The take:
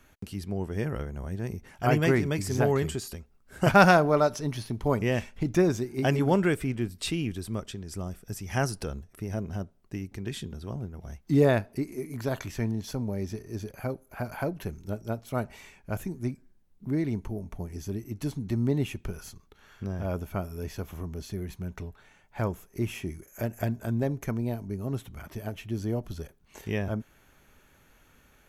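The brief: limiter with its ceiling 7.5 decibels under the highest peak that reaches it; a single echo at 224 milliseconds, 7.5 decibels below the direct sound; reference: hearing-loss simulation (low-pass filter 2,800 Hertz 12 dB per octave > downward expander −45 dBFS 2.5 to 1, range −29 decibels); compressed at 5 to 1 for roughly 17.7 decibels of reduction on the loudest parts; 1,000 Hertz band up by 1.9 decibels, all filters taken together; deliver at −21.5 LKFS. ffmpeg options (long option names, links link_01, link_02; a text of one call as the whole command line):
ffmpeg -i in.wav -af "equalizer=frequency=1000:width_type=o:gain=3,acompressor=threshold=-32dB:ratio=5,alimiter=level_in=2.5dB:limit=-24dB:level=0:latency=1,volume=-2.5dB,lowpass=2800,aecho=1:1:224:0.422,agate=range=-29dB:threshold=-45dB:ratio=2.5,volume=17.5dB" out.wav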